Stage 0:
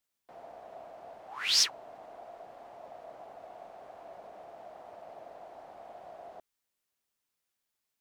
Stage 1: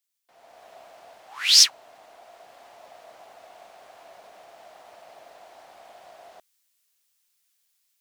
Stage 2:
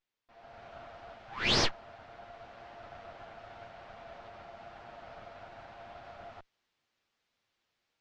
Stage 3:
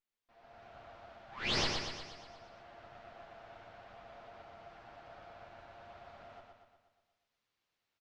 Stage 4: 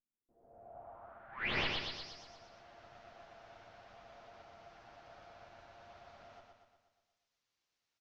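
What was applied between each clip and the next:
automatic gain control gain up to 10.5 dB; tilt shelving filter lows −9.5 dB, about 1,400 Hz; level −6 dB
lower of the sound and its delayed copy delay 8.7 ms; soft clipping −19 dBFS, distortion −7 dB; Gaussian smoothing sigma 2 samples; level +2 dB
repeating echo 120 ms, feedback 56%, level −4 dB; level −6.5 dB
low-pass filter sweep 240 Hz → 6,200 Hz, 0:00.01–0:02.23; level −3.5 dB

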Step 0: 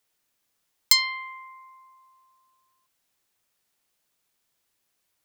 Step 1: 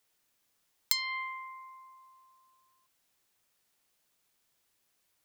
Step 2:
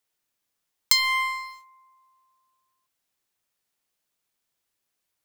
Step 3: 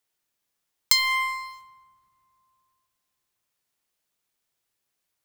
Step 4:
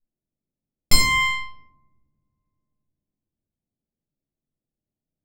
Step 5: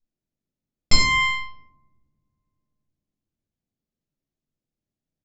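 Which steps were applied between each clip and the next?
downward compressor 16 to 1, threshold −25 dBFS, peak gain reduction 14 dB
leveller curve on the samples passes 3; level +1 dB
convolution reverb RT60 2.9 s, pre-delay 4 ms, DRR 14 dB
lower of the sound and its delayed copy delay 0.38 ms; low-pass that shuts in the quiet parts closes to 330 Hz, open at −25.5 dBFS; rectangular room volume 580 cubic metres, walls furnished, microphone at 6.7 metres; level −4 dB
downsampling to 16,000 Hz

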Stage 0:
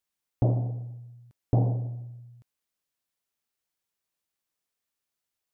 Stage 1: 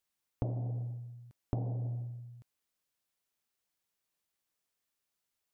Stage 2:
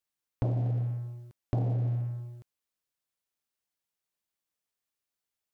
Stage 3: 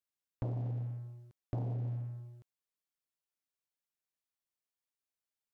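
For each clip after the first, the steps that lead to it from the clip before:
downward compressor 16 to 1, threshold −31 dBFS, peak gain reduction 13.5 dB
leveller curve on the samples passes 2
highs frequency-modulated by the lows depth 0.34 ms; level −7.5 dB

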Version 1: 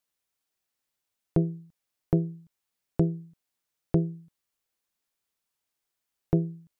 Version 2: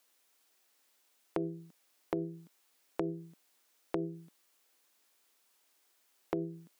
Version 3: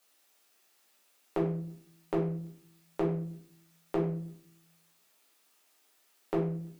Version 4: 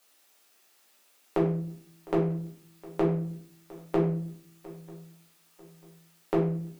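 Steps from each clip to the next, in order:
high-pass filter 250 Hz 24 dB per octave; brickwall limiter −28 dBFS, peak gain reduction 11 dB; downward compressor 6 to 1, threshold −44 dBFS, peak gain reduction 10.5 dB; level +12 dB
rectangular room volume 60 cubic metres, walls mixed, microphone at 1.2 metres; level −1.5 dB
feedback echo with a long and a short gap by turns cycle 943 ms, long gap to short 3 to 1, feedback 36%, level −20 dB; level +4.5 dB

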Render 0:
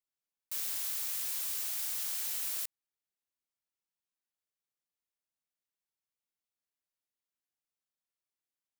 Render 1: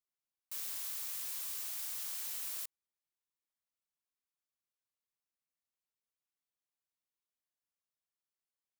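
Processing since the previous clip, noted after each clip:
parametric band 1,100 Hz +4 dB 0.26 octaves
level −5 dB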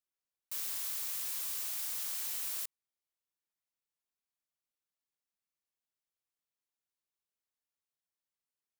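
leveller curve on the samples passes 1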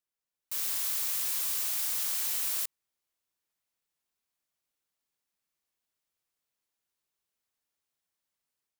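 automatic gain control gain up to 6.5 dB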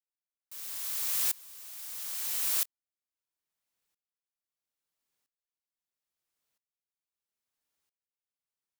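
tremolo with a ramp in dB swelling 0.76 Hz, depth 26 dB
level +4.5 dB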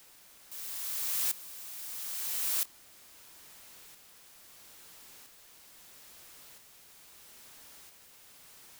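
converter with a step at zero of −43 dBFS
level −2.5 dB

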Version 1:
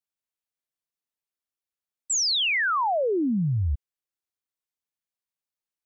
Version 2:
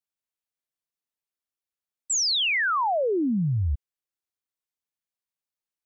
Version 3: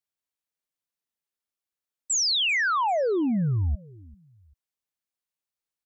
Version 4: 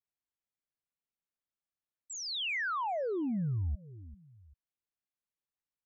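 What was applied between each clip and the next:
no processing that can be heard
repeating echo 392 ms, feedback 33%, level −23 dB
bass and treble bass +5 dB, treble −13 dB; downward compressor 3 to 1, threshold −27 dBFS, peak gain reduction 7 dB; level −6 dB

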